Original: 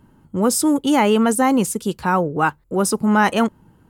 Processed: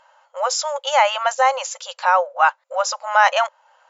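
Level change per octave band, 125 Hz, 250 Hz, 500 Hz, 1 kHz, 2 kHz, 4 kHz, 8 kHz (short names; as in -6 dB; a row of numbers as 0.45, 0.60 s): under -40 dB, under -40 dB, -2.0 dB, +3.5 dB, +3.5 dB, +4.0 dB, -2.5 dB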